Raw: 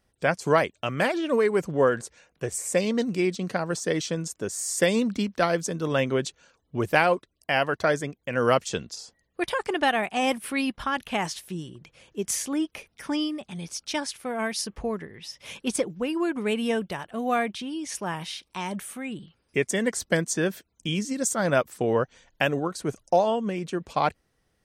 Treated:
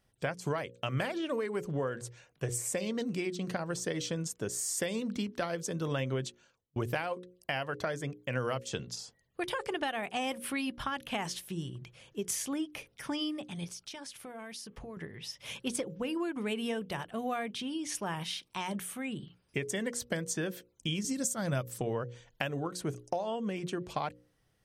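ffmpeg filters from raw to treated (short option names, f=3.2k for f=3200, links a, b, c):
-filter_complex "[0:a]asettb=1/sr,asplit=3[a][b][c];[a]atrim=end=13.644[d];[b]atrim=start=13.64:end=14.97,asetpts=PTS-STARTPTS,afade=t=in:d=0.004:c=qsin,afade=t=out:st=1.326:d=0.004:c=qsin,acompressor=threshold=-38dB:ratio=10:attack=3.2:release=140:knee=1:detection=peak[e];[c]atrim=start=14.966[f];[d][e]acrossfade=d=0.004:c1=hsin:c2=qsin[g];[g][f]acrossfade=d=0.004:c1=qsin:c2=hsin,asettb=1/sr,asplit=3[h][i][j];[h]atrim=end=21.044[k];[i]atrim=start=21.04:end=21.81,asetpts=PTS-STARTPTS,afade=t=in:d=0.004:c=qsin,afade=t=out:st=0.766:d=0.004:c=qsin,bass=f=250:g=8,treble=f=4k:g=8[l];[j]atrim=start=21.806[m];[k][l]acrossfade=d=0.004:c1=hsin:c2=qsin[n];[n][m]acrossfade=d=0.004:c1=qsin:c2=hsin,asplit=2[o][p];[o]atrim=end=6.76,asetpts=PTS-STARTPTS,afade=t=out:st=6.18:d=0.58[q];[p]atrim=start=6.76,asetpts=PTS-STARTPTS,afade=t=in:d=0.004:c=hsin[r];[q][r]concat=n=2:v=0:a=1,bandreject=f=60:t=h:w=6,bandreject=f=120:t=h:w=6,bandreject=f=180:t=h:w=6,bandreject=f=240:t=h:w=6,bandreject=f=300:t=h:w=6,bandreject=f=360:t=h:w=6,bandreject=f=420:t=h:w=6,bandreject=f=480:t=h:w=6,bandreject=f=540:t=h:w=6,acompressor=threshold=-28dB:ratio=6,equalizer=f=125:t=o:w=0.33:g=10,equalizer=f=3.15k:t=o:w=0.33:g=3,equalizer=f=12.5k:t=o:w=0.33:g=4,volume=-3dB"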